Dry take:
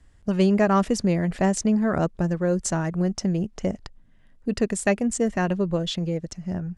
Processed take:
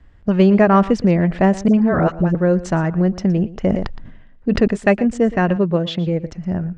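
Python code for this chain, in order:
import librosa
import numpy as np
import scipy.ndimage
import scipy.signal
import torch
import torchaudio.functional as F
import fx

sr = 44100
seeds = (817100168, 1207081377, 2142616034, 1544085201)

y = scipy.signal.sosfilt(scipy.signal.butter(2, 2900.0, 'lowpass', fs=sr, output='sos'), x)
y = fx.dispersion(y, sr, late='highs', ms=58.0, hz=650.0, at=(1.68, 2.35))
y = fx.highpass(y, sr, hz=93.0, slope=12, at=(5.56, 6.07))
y = y + 10.0 ** (-18.0 / 20.0) * np.pad(y, (int(117 * sr / 1000.0), 0))[:len(y)]
y = fx.sustainer(y, sr, db_per_s=50.0, at=(3.62, 4.68))
y = y * 10.0 ** (7.0 / 20.0)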